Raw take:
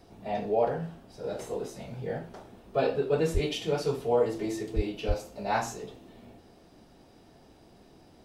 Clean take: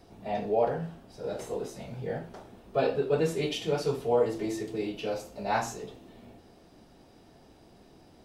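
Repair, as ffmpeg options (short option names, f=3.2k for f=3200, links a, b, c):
-filter_complex "[0:a]asplit=3[a][b][c];[a]afade=t=out:st=3.33:d=0.02[d];[b]highpass=f=140:w=0.5412,highpass=f=140:w=1.3066,afade=t=in:st=3.33:d=0.02,afade=t=out:st=3.45:d=0.02[e];[c]afade=t=in:st=3.45:d=0.02[f];[d][e][f]amix=inputs=3:normalize=0,asplit=3[g][h][i];[g]afade=t=out:st=4.75:d=0.02[j];[h]highpass=f=140:w=0.5412,highpass=f=140:w=1.3066,afade=t=in:st=4.75:d=0.02,afade=t=out:st=4.87:d=0.02[k];[i]afade=t=in:st=4.87:d=0.02[l];[j][k][l]amix=inputs=3:normalize=0,asplit=3[m][n][o];[m]afade=t=out:st=5.07:d=0.02[p];[n]highpass=f=140:w=0.5412,highpass=f=140:w=1.3066,afade=t=in:st=5.07:d=0.02,afade=t=out:st=5.19:d=0.02[q];[o]afade=t=in:st=5.19:d=0.02[r];[p][q][r]amix=inputs=3:normalize=0"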